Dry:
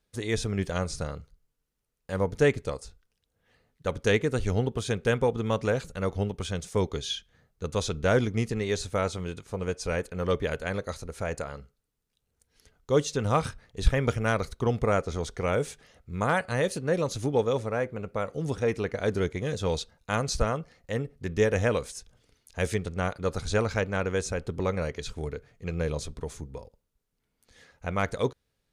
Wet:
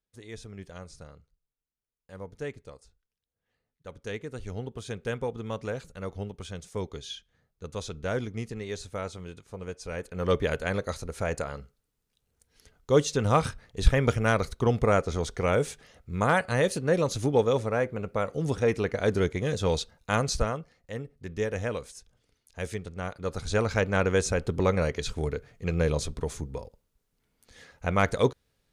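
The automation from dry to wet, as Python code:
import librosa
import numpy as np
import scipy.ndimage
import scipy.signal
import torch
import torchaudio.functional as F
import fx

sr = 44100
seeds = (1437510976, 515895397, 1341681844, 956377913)

y = fx.gain(x, sr, db=fx.line((3.88, -14.0), (4.99, -7.0), (9.91, -7.0), (10.32, 2.0), (20.23, 2.0), (20.76, -6.0), (23.0, -6.0), (23.99, 4.0)))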